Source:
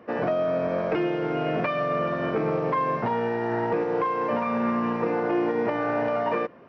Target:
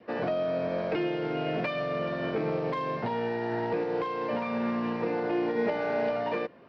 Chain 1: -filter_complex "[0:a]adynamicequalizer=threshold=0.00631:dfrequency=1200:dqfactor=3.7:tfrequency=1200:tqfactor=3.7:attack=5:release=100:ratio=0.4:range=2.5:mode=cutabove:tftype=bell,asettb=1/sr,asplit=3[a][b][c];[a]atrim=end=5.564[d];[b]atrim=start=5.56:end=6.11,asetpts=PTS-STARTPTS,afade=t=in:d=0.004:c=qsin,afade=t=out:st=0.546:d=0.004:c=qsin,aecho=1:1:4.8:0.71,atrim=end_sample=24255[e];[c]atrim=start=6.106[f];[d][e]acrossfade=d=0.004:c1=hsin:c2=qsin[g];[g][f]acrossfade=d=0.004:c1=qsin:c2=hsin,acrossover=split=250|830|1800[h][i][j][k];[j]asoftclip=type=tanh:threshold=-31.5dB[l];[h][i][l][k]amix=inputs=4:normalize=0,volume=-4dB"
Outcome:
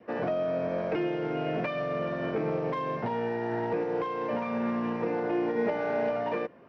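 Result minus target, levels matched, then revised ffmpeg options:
4000 Hz band -4.0 dB
-filter_complex "[0:a]adynamicequalizer=threshold=0.00631:dfrequency=1200:dqfactor=3.7:tfrequency=1200:tqfactor=3.7:attack=5:release=100:ratio=0.4:range=2.5:mode=cutabove:tftype=bell,lowpass=f=4.4k:t=q:w=2.8,asettb=1/sr,asplit=3[a][b][c];[a]atrim=end=5.564[d];[b]atrim=start=5.56:end=6.11,asetpts=PTS-STARTPTS,afade=t=in:d=0.004:c=qsin,afade=t=out:st=0.546:d=0.004:c=qsin,aecho=1:1:4.8:0.71,atrim=end_sample=24255[e];[c]atrim=start=6.106[f];[d][e]acrossfade=d=0.004:c1=hsin:c2=qsin[g];[g][f]acrossfade=d=0.004:c1=qsin:c2=hsin,acrossover=split=250|830|1800[h][i][j][k];[j]asoftclip=type=tanh:threshold=-31.5dB[l];[h][i][l][k]amix=inputs=4:normalize=0,volume=-4dB"

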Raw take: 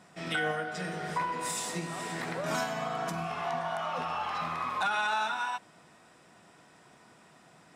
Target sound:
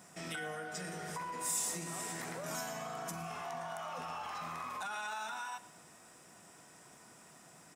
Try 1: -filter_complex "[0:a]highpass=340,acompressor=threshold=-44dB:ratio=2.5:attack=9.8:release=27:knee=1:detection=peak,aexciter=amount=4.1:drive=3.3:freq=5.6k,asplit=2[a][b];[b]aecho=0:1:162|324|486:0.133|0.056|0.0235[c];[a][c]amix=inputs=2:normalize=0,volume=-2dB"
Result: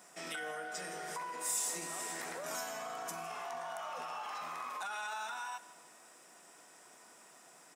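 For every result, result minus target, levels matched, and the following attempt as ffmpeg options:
echo 48 ms late; 250 Hz band -6.0 dB
-filter_complex "[0:a]highpass=340,acompressor=threshold=-44dB:ratio=2.5:attack=9.8:release=27:knee=1:detection=peak,aexciter=amount=4.1:drive=3.3:freq=5.6k,asplit=2[a][b];[b]aecho=0:1:114|228|342:0.133|0.056|0.0235[c];[a][c]amix=inputs=2:normalize=0,volume=-2dB"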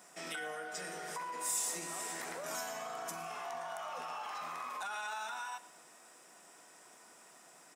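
250 Hz band -6.0 dB
-filter_complex "[0:a]acompressor=threshold=-44dB:ratio=2.5:attack=9.8:release=27:knee=1:detection=peak,aexciter=amount=4.1:drive=3.3:freq=5.6k,asplit=2[a][b];[b]aecho=0:1:114|228|342:0.133|0.056|0.0235[c];[a][c]amix=inputs=2:normalize=0,volume=-2dB"

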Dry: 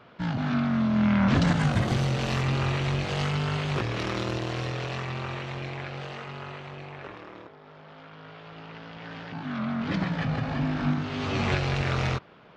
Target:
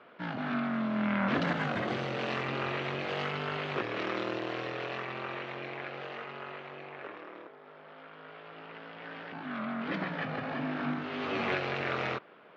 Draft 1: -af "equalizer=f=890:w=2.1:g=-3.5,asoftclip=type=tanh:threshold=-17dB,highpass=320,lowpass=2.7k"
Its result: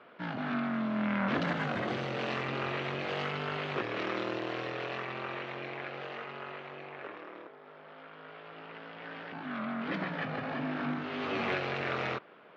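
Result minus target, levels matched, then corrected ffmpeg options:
soft clip: distortion +12 dB
-af "equalizer=f=890:w=2.1:g=-3.5,asoftclip=type=tanh:threshold=-10dB,highpass=320,lowpass=2.7k"

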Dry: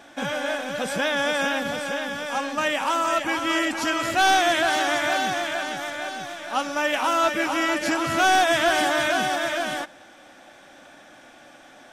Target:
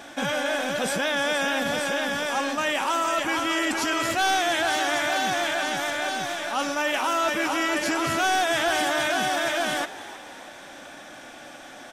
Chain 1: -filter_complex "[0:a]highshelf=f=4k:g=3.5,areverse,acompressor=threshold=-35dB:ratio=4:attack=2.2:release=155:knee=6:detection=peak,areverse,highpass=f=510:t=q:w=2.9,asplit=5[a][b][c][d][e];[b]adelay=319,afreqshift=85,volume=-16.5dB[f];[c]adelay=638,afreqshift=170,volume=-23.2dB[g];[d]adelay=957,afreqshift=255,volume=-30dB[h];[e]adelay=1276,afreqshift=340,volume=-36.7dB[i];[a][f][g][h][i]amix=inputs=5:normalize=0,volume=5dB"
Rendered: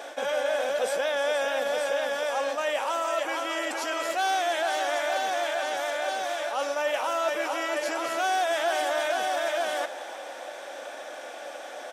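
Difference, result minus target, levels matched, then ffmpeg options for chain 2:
compressor: peak gain reduction +6.5 dB; 500 Hz band +4.5 dB
-filter_complex "[0:a]highshelf=f=4k:g=3.5,areverse,acompressor=threshold=-26.5dB:ratio=4:attack=2.2:release=155:knee=6:detection=peak,areverse,asplit=5[a][b][c][d][e];[b]adelay=319,afreqshift=85,volume=-16.5dB[f];[c]adelay=638,afreqshift=170,volume=-23.2dB[g];[d]adelay=957,afreqshift=255,volume=-30dB[h];[e]adelay=1276,afreqshift=340,volume=-36.7dB[i];[a][f][g][h][i]amix=inputs=5:normalize=0,volume=5dB"

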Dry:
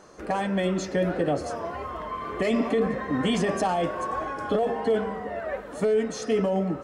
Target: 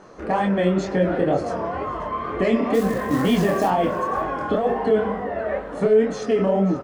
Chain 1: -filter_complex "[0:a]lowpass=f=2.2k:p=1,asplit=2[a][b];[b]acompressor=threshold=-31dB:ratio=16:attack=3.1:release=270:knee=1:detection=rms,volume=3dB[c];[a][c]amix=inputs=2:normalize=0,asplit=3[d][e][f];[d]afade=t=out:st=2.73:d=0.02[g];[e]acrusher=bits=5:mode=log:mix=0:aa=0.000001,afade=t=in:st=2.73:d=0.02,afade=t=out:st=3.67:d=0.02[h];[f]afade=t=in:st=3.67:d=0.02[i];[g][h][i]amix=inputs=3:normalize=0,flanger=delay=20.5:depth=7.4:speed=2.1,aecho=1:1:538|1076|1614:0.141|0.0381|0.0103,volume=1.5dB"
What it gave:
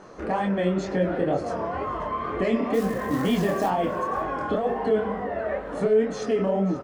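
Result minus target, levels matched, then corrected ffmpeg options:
compressor: peak gain reduction +10.5 dB
-filter_complex "[0:a]lowpass=f=2.2k:p=1,asplit=2[a][b];[b]acompressor=threshold=-20dB:ratio=16:attack=3.1:release=270:knee=1:detection=rms,volume=3dB[c];[a][c]amix=inputs=2:normalize=0,asplit=3[d][e][f];[d]afade=t=out:st=2.73:d=0.02[g];[e]acrusher=bits=5:mode=log:mix=0:aa=0.000001,afade=t=in:st=2.73:d=0.02,afade=t=out:st=3.67:d=0.02[h];[f]afade=t=in:st=3.67:d=0.02[i];[g][h][i]amix=inputs=3:normalize=0,flanger=delay=20.5:depth=7.4:speed=2.1,aecho=1:1:538|1076|1614:0.141|0.0381|0.0103,volume=1.5dB"

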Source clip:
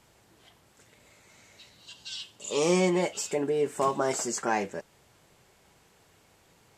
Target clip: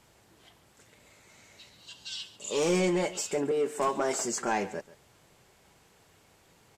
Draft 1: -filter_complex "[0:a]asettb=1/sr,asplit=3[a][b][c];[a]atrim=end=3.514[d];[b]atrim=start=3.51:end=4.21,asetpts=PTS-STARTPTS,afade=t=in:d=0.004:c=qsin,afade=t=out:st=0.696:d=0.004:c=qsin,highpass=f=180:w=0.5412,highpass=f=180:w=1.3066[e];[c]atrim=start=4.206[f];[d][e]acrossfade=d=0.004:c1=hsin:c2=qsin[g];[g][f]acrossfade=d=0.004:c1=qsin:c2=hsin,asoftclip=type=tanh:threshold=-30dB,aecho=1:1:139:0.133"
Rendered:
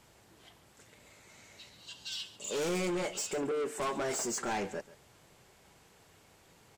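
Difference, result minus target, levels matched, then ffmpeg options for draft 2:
soft clip: distortion +10 dB
-filter_complex "[0:a]asettb=1/sr,asplit=3[a][b][c];[a]atrim=end=3.514[d];[b]atrim=start=3.51:end=4.21,asetpts=PTS-STARTPTS,afade=t=in:d=0.004:c=qsin,afade=t=out:st=0.696:d=0.004:c=qsin,highpass=f=180:w=0.5412,highpass=f=180:w=1.3066[e];[c]atrim=start=4.206[f];[d][e]acrossfade=d=0.004:c1=hsin:c2=qsin[g];[g][f]acrossfade=d=0.004:c1=qsin:c2=hsin,asoftclip=type=tanh:threshold=-18.5dB,aecho=1:1:139:0.133"

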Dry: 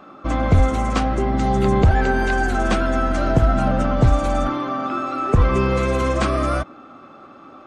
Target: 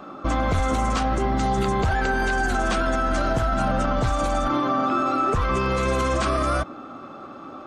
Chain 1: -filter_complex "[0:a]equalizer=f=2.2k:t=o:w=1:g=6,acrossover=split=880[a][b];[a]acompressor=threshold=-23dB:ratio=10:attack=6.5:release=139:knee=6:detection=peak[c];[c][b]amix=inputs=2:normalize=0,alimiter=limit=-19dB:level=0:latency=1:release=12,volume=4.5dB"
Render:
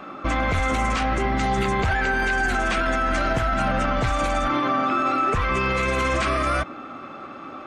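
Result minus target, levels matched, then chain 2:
2000 Hz band +3.5 dB
-filter_complex "[0:a]equalizer=f=2.2k:t=o:w=1:g=-4,acrossover=split=880[a][b];[a]acompressor=threshold=-23dB:ratio=10:attack=6.5:release=139:knee=6:detection=peak[c];[c][b]amix=inputs=2:normalize=0,alimiter=limit=-19dB:level=0:latency=1:release=12,volume=4.5dB"

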